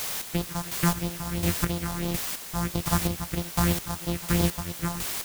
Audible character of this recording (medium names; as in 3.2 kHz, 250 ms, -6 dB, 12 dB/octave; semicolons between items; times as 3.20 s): a buzz of ramps at a fixed pitch in blocks of 256 samples; phasing stages 4, 3 Hz, lowest notch 390–1800 Hz; a quantiser's noise floor 6-bit, dither triangular; chopped level 1.4 Hz, depth 60%, duty 30%